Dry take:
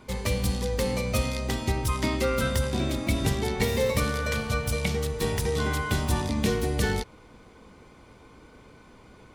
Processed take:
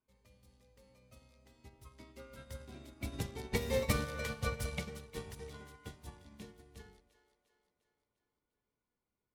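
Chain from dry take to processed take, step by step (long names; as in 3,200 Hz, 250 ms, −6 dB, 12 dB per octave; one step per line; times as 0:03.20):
source passing by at 0:04.21, 7 m/s, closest 5.8 metres
echo with a time of its own for lows and highs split 410 Hz, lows 87 ms, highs 351 ms, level −10 dB
expander for the loud parts 2.5 to 1, over −36 dBFS
level −4 dB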